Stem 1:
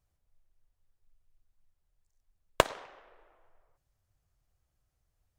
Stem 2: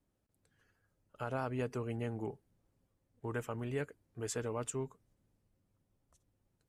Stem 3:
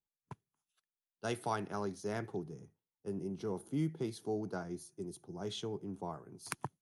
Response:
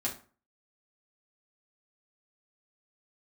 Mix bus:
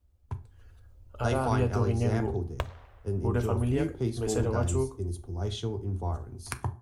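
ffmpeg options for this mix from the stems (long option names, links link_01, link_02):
-filter_complex "[0:a]volume=-6.5dB,asplit=2[link_01][link_02];[link_02]volume=-23.5dB[link_03];[1:a]equalizer=frequency=1800:width_type=o:width=0.71:gain=-8,dynaudnorm=framelen=130:gausssize=7:maxgain=11dB,volume=-0.5dB,asplit=2[link_04][link_05];[link_05]volume=-12dB[link_06];[2:a]equalizer=frequency=110:width=0.49:gain=7.5,volume=1dB,asplit=2[link_07][link_08];[link_08]volume=-7.5dB[link_09];[link_01][link_04]amix=inputs=2:normalize=0,equalizer=frequency=9200:width_type=o:width=1.5:gain=-10.5,acompressor=threshold=-39dB:ratio=1.5,volume=0dB[link_10];[3:a]atrim=start_sample=2205[link_11];[link_03][link_06][link_09]amix=inputs=3:normalize=0[link_12];[link_12][link_11]afir=irnorm=-1:irlink=0[link_13];[link_07][link_10][link_13]amix=inputs=3:normalize=0,lowshelf=frequency=110:width_type=q:width=3:gain=13"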